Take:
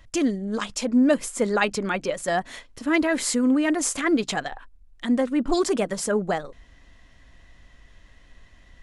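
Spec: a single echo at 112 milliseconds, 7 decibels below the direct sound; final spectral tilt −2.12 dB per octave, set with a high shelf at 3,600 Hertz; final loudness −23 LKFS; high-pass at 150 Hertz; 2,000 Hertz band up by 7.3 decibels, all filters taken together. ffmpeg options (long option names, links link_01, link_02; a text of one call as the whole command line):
ffmpeg -i in.wav -af "highpass=150,equalizer=frequency=2000:width_type=o:gain=6.5,highshelf=frequency=3600:gain=8,aecho=1:1:112:0.447,volume=-2.5dB" out.wav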